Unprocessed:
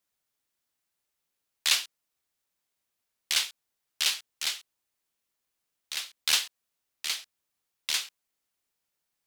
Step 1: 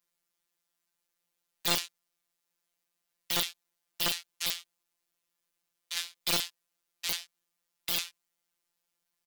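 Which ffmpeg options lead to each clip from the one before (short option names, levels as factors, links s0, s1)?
-filter_complex "[0:a]asplit=2[s0][s1];[s1]adelay=18,volume=0.501[s2];[s0][s2]amix=inputs=2:normalize=0,afftfilt=real='hypot(re,im)*cos(PI*b)':imag='0':win_size=1024:overlap=0.75,aeval=exprs='(mod(3.98*val(0)+1,2)-1)/3.98':c=same,volume=1.26"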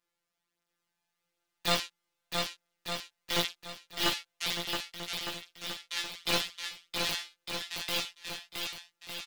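-filter_complex "[0:a]lowpass=f=2900:p=1,flanger=delay=15:depth=3.6:speed=0.49,asplit=2[s0][s1];[s1]aecho=0:1:670|1206|1635|1978|2252:0.631|0.398|0.251|0.158|0.1[s2];[s0][s2]amix=inputs=2:normalize=0,volume=2.24"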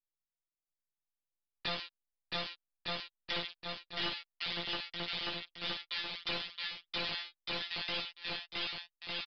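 -af "anlmdn=0.000158,acompressor=threshold=0.0224:ratio=8,aresample=11025,asoftclip=type=tanh:threshold=0.0299,aresample=44100,volume=1.58"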